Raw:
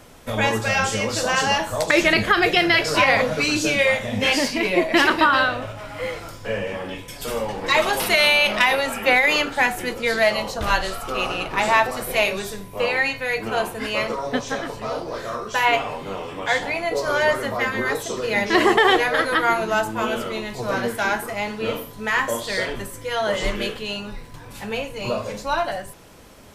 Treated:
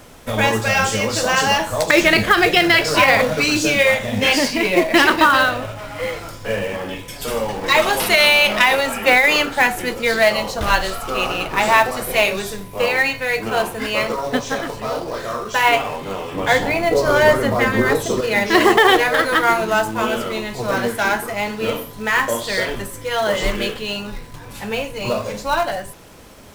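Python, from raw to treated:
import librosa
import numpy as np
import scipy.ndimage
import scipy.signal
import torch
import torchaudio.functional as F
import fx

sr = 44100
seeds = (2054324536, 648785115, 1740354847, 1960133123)

p1 = fx.quant_companded(x, sr, bits=4)
p2 = x + F.gain(torch.from_numpy(p1), -3.5).numpy()
p3 = fx.low_shelf(p2, sr, hz=490.0, db=8.5, at=(16.34, 18.21))
y = F.gain(torch.from_numpy(p3), -1.0).numpy()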